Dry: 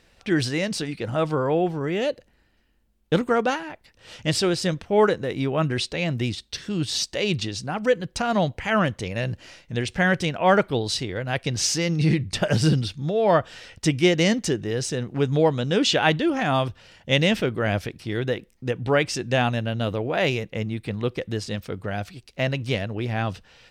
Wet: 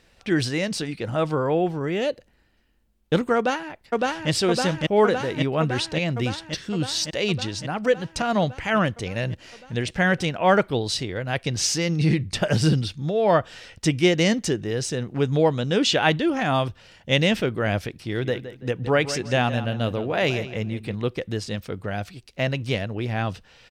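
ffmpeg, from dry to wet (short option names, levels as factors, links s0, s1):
-filter_complex "[0:a]asplit=2[s0][s1];[s1]afade=t=in:st=3.36:d=0.01,afade=t=out:st=4.3:d=0.01,aecho=0:1:560|1120|1680|2240|2800|3360|3920|4480|5040|5600|6160|6720:0.944061|0.708046|0.531034|0.398276|0.298707|0.22403|0.168023|0.126017|0.0945127|0.0708845|0.0531634|0.0398725[s2];[s0][s2]amix=inputs=2:normalize=0,asettb=1/sr,asplit=3[s3][s4][s5];[s3]atrim=end=17.904[s6];[s4]atrim=start=17.9:end=20.95,asetpts=PTS-STARTPTS,afade=t=in:d=0.004:c=qsin,afade=t=out:st=3.046:d=0.004:c=qsin,asplit=2[s7][s8];[s8]adelay=166,lowpass=f=3900:p=1,volume=0.251,asplit=2[s9][s10];[s10]adelay=166,lowpass=f=3900:p=1,volume=0.31,asplit=2[s11][s12];[s12]adelay=166,lowpass=f=3900:p=1,volume=0.31[s13];[s7][s9][s11][s13]amix=inputs=4:normalize=0,atrim=end_sample=134505[s14];[s5]atrim=start=20.946[s15];[s6][s14]acrossfade=d=0.004:c1=hsin:c2=qsin[s16];[s16][s15]acrossfade=d=0.004:c1=qsin:c2=hsin"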